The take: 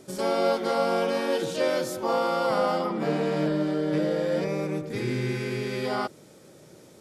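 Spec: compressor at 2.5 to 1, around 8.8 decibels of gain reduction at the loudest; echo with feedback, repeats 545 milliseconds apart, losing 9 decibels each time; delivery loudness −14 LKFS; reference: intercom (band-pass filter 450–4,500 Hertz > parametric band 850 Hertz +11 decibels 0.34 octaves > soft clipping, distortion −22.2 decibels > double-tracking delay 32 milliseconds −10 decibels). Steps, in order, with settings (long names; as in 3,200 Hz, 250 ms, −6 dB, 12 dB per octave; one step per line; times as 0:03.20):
downward compressor 2.5 to 1, threshold −34 dBFS
band-pass filter 450–4,500 Hz
parametric band 850 Hz +11 dB 0.34 octaves
repeating echo 545 ms, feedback 35%, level −9 dB
soft clipping −22 dBFS
double-tracking delay 32 ms −10 dB
level +20.5 dB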